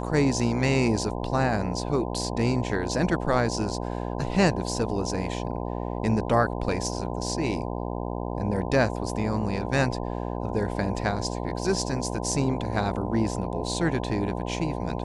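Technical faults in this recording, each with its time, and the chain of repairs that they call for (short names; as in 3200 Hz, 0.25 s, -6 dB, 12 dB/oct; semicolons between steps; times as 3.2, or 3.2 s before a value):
buzz 60 Hz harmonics 17 -31 dBFS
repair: de-hum 60 Hz, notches 17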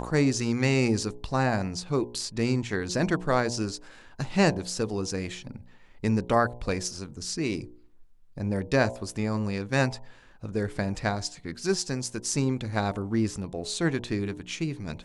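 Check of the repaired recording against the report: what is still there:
none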